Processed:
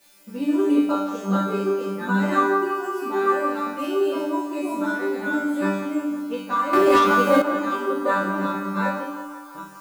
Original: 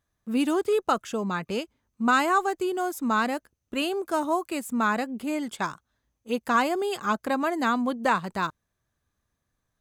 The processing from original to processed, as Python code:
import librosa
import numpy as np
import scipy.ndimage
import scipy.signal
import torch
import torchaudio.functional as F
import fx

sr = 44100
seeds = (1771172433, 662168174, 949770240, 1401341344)

p1 = fx.reverse_delay(x, sr, ms=564, wet_db=-0.5)
p2 = fx.transient(p1, sr, attack_db=8, sustain_db=-1)
p3 = scipy.signal.sosfilt(scipy.signal.butter(2, 62.0, 'highpass', fs=sr, output='sos'), p2)
p4 = fx.high_shelf(p3, sr, hz=5500.0, db=-7.0)
p5 = fx.room_shoebox(p4, sr, seeds[0], volume_m3=33.0, walls='mixed', distance_m=0.84)
p6 = fx.quant_dither(p5, sr, seeds[1], bits=6, dither='triangular')
p7 = p5 + (p6 * librosa.db_to_amplitude(-3.0))
p8 = fx.resonator_bank(p7, sr, root=55, chord='fifth', decay_s=0.72)
p9 = fx.leveller(p8, sr, passes=3, at=(6.73, 7.42))
p10 = fx.small_body(p9, sr, hz=(310.0, 510.0), ring_ms=35, db=12)
p11 = p10 + fx.echo_banded(p10, sr, ms=171, feedback_pct=69, hz=1100.0, wet_db=-7.5, dry=0)
y = p11 * librosa.db_to_amplitude(3.5)